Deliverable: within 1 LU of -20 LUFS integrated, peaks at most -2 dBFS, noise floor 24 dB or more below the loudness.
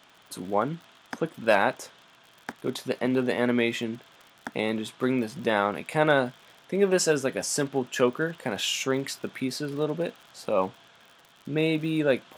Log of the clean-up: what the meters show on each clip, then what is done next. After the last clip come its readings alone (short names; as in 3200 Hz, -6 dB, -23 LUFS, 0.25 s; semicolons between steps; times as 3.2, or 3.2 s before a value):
ticks 49/s; loudness -27.0 LUFS; peak -6.5 dBFS; loudness target -20.0 LUFS
-> de-click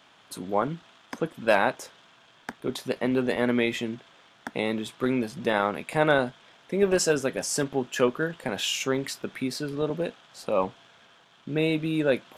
ticks 0.16/s; loudness -27.0 LUFS; peak -6.5 dBFS; loudness target -20.0 LUFS
-> gain +7 dB; limiter -2 dBFS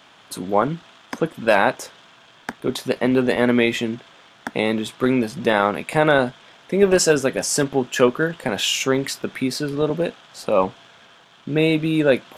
loudness -20.5 LUFS; peak -2.0 dBFS; noise floor -51 dBFS